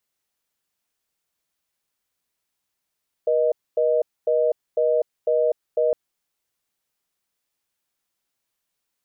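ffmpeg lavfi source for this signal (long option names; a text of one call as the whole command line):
ffmpeg -f lavfi -i "aevalsrc='0.106*(sin(2*PI*480*t)+sin(2*PI*620*t))*clip(min(mod(t,0.5),0.25-mod(t,0.5))/0.005,0,1)':duration=2.66:sample_rate=44100" out.wav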